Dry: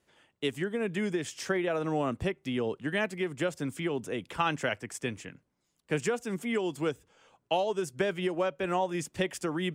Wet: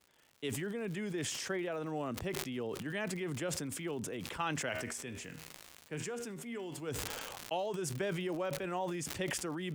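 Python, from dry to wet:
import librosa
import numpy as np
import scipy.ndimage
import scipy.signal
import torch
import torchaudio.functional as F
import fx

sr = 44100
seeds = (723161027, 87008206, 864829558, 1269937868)

y = fx.dmg_crackle(x, sr, seeds[0], per_s=160.0, level_db=-42.0)
y = fx.comb_fb(y, sr, f0_hz=79.0, decay_s=0.46, harmonics='all', damping=0.0, mix_pct=50, at=(4.71, 6.87), fade=0.02)
y = fx.sustainer(y, sr, db_per_s=22.0)
y = y * librosa.db_to_amplitude(-8.5)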